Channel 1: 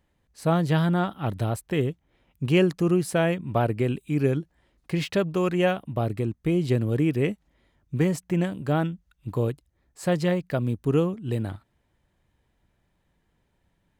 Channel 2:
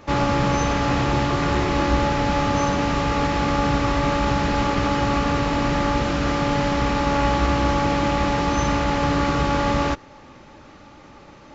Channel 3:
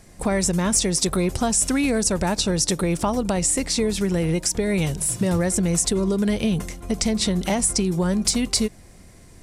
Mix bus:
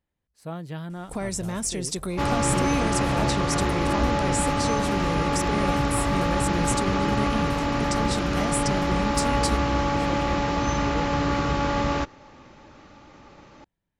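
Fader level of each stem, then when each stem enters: −12.5, −3.5, −8.5 decibels; 0.00, 2.10, 0.90 seconds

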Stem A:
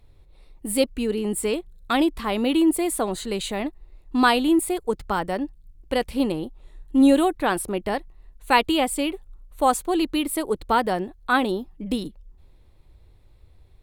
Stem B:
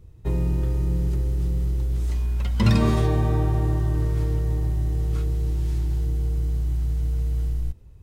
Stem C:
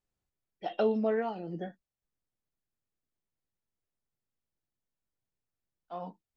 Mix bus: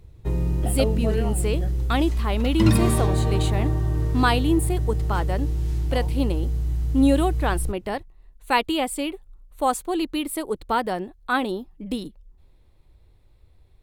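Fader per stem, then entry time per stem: −2.5, −0.5, 0.0 decibels; 0.00, 0.00, 0.00 seconds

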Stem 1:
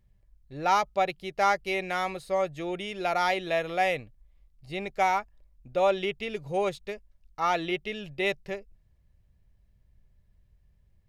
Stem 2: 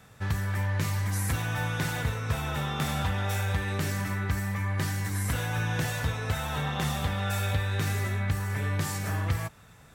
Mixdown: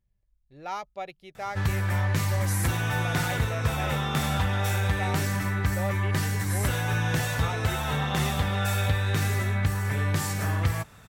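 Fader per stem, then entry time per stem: −10.5, +3.0 decibels; 0.00, 1.35 seconds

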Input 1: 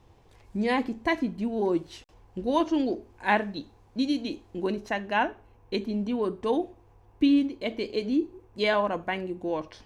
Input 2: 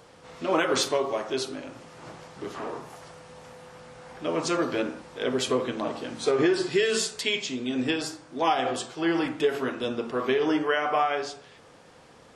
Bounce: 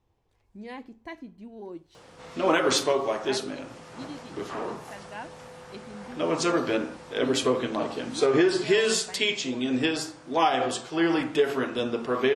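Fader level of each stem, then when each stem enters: −14.5, +1.5 decibels; 0.00, 1.95 seconds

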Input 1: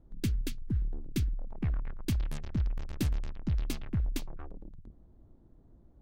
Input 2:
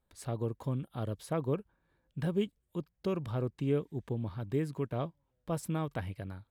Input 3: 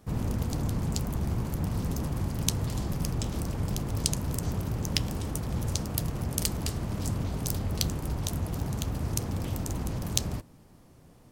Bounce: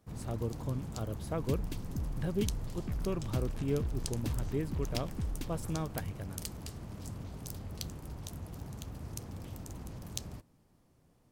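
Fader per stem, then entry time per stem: −6.0, −2.5, −12.0 decibels; 1.25, 0.00, 0.00 seconds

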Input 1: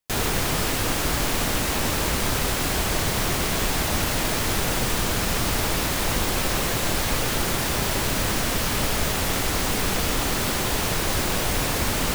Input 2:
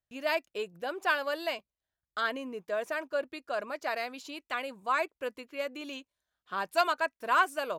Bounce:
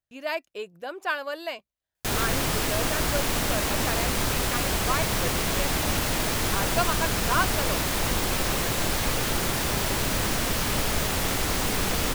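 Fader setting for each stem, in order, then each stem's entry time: −2.0, 0.0 decibels; 1.95, 0.00 seconds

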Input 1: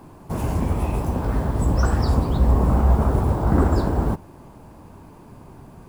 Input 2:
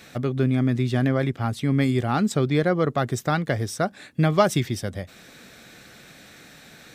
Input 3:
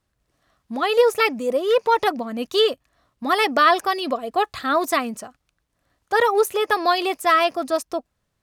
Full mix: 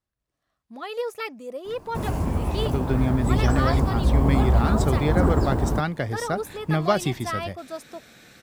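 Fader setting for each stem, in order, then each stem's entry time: −2.5, −3.0, −13.0 decibels; 1.65, 2.50, 0.00 seconds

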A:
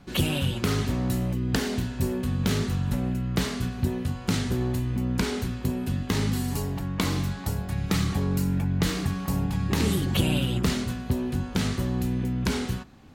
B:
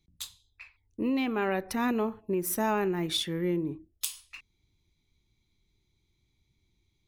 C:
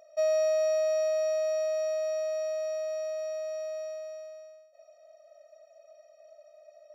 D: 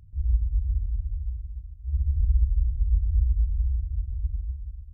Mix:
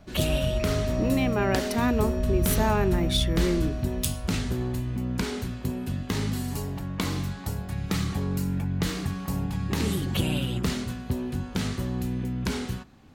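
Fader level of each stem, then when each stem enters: −2.5, +2.5, −6.0, −6.0 decibels; 0.00, 0.00, 0.00, 0.00 seconds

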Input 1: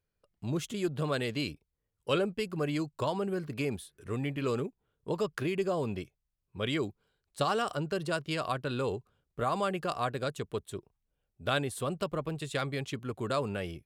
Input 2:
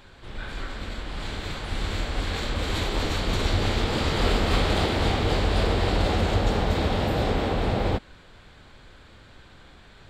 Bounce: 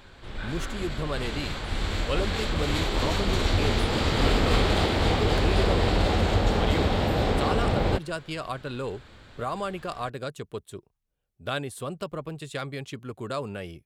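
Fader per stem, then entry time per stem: −0.5, 0.0 decibels; 0.00, 0.00 seconds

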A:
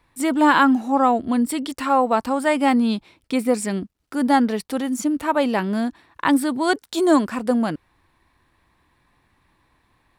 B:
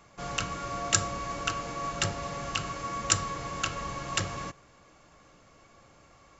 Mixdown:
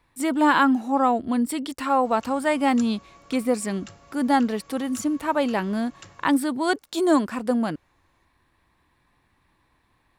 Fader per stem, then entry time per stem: −3.0, −16.5 decibels; 0.00, 1.85 seconds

